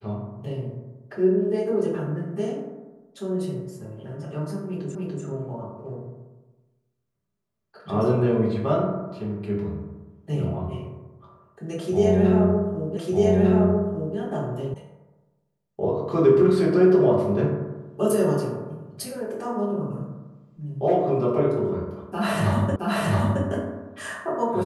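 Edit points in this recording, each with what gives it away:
4.95 repeat of the last 0.29 s
12.97 repeat of the last 1.2 s
14.74 sound cut off
22.76 repeat of the last 0.67 s

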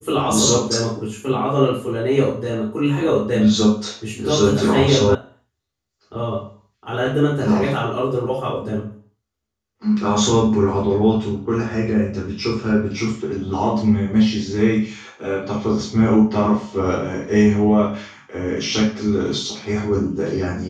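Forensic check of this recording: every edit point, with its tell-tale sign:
5.15 sound cut off

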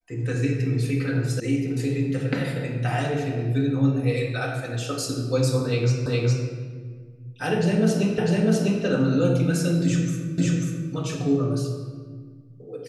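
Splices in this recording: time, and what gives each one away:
1.4 sound cut off
6.06 repeat of the last 0.41 s
8.18 repeat of the last 0.65 s
10.38 repeat of the last 0.54 s

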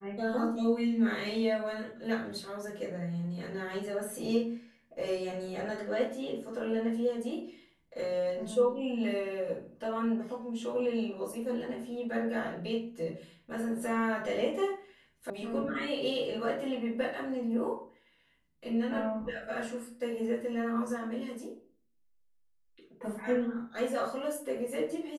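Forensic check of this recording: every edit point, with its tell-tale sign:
15.3 sound cut off

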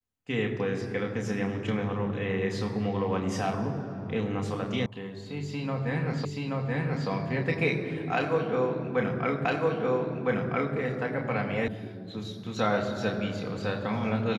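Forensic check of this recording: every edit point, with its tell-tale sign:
4.86 sound cut off
6.25 repeat of the last 0.83 s
9.45 repeat of the last 1.31 s
11.68 sound cut off

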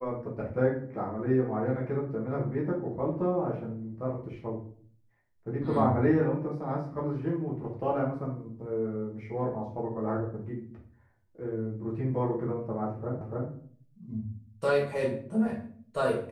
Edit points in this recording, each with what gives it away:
13.21 repeat of the last 0.29 s

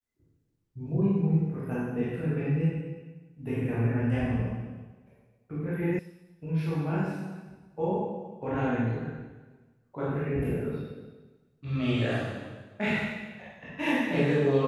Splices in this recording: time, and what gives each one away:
5.99 sound cut off

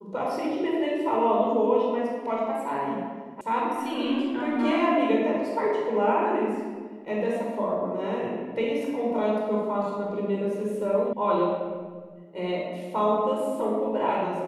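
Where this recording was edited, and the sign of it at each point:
3.41 sound cut off
11.13 sound cut off

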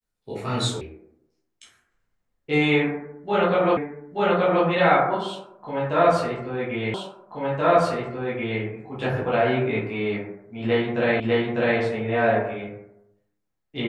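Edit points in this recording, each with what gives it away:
0.81 sound cut off
3.77 repeat of the last 0.88 s
6.94 repeat of the last 1.68 s
11.2 repeat of the last 0.6 s

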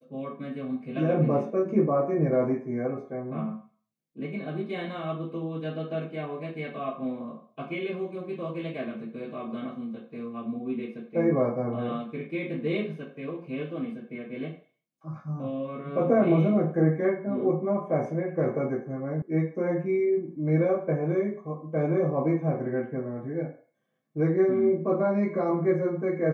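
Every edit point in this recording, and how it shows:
19.22 sound cut off

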